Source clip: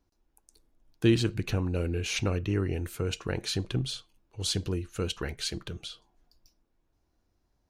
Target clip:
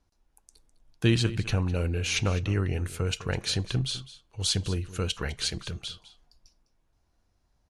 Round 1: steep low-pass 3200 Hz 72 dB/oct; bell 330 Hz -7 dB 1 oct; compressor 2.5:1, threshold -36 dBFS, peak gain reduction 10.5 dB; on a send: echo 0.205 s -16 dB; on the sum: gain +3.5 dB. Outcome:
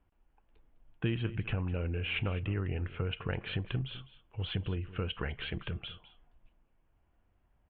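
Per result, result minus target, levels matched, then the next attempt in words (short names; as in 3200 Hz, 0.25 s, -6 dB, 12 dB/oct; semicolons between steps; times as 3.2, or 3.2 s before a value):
compressor: peak gain reduction +10.5 dB; 4000 Hz band -3.0 dB
steep low-pass 3200 Hz 72 dB/oct; bell 330 Hz -7 dB 1 oct; on a send: echo 0.205 s -16 dB; on the sum: gain +3.5 dB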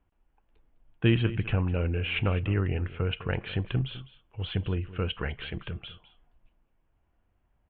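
4000 Hz band -5.5 dB
steep low-pass 12000 Hz 72 dB/oct; bell 330 Hz -7 dB 1 oct; on a send: echo 0.205 s -16 dB; on the sum: gain +3.5 dB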